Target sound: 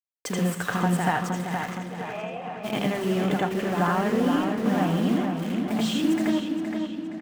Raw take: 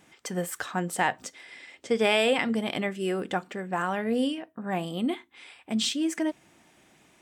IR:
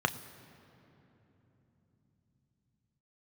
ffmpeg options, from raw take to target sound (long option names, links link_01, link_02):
-filter_complex "[0:a]asettb=1/sr,asplit=3[link_01][link_02][link_03];[link_01]atrim=end=3.574[link_04];[link_02]atrim=start=3.57:end=4.51,asetpts=PTS-STARTPTS,afade=type=in:duration=0.004:curve=qsin,afade=type=out:start_time=0.936:duration=0.004:curve=qsin,aeval=exprs='val(0)+0.5*0.00708*sgn(val(0))':channel_layout=same[link_05];[link_03]atrim=start=4.506[link_06];[link_04][link_05]acrossfade=duration=0.004:curve1=hsin:curve2=qsin[link_07];[link_07][link_06]acrossfade=duration=0.004:curve1=qsin:curve2=hsin,lowshelf=frequency=330:gain=7.5,acompressor=threshold=-31dB:ratio=4,acrusher=bits=6:mix=0:aa=0.000001,asplit=3[link_08][link_09][link_10];[link_08]afade=type=out:start_time=1.76:duration=0.02[link_11];[link_09]asplit=3[link_12][link_13][link_14];[link_12]bandpass=frequency=730:width_type=q:width=8,volume=0dB[link_15];[link_13]bandpass=frequency=1090:width_type=q:width=8,volume=-6dB[link_16];[link_14]bandpass=frequency=2440:width_type=q:width=8,volume=-9dB[link_17];[link_15][link_16][link_17]amix=inputs=3:normalize=0,afade=type=in:start_time=1.76:duration=0.02,afade=type=out:start_time=2.63:duration=0.02[link_18];[link_10]afade=type=in:start_time=2.63:duration=0.02[link_19];[link_11][link_18][link_19]amix=inputs=3:normalize=0,asplit=2[link_20][link_21];[link_21]adelay=469,lowpass=frequency=3900:poles=1,volume=-5.5dB,asplit=2[link_22][link_23];[link_23]adelay=469,lowpass=frequency=3900:poles=1,volume=0.52,asplit=2[link_24][link_25];[link_25]adelay=469,lowpass=frequency=3900:poles=1,volume=0.52,asplit=2[link_26][link_27];[link_27]adelay=469,lowpass=frequency=3900:poles=1,volume=0.52,asplit=2[link_28][link_29];[link_29]adelay=469,lowpass=frequency=3900:poles=1,volume=0.52,asplit=2[link_30][link_31];[link_31]adelay=469,lowpass=frequency=3900:poles=1,volume=0.52,asplit=2[link_32][link_33];[link_33]adelay=469,lowpass=frequency=3900:poles=1,volume=0.52[link_34];[link_20][link_22][link_24][link_26][link_28][link_30][link_32][link_34]amix=inputs=8:normalize=0,asplit=2[link_35][link_36];[1:a]atrim=start_sample=2205,adelay=81[link_37];[link_36][link_37]afir=irnorm=-1:irlink=0,volume=-4dB[link_38];[link_35][link_38]amix=inputs=2:normalize=0,adynamicequalizer=threshold=0.00631:dfrequency=2800:dqfactor=0.7:tfrequency=2800:tqfactor=0.7:attack=5:release=100:ratio=0.375:range=2:mode=cutabove:tftype=highshelf,volume=2.5dB"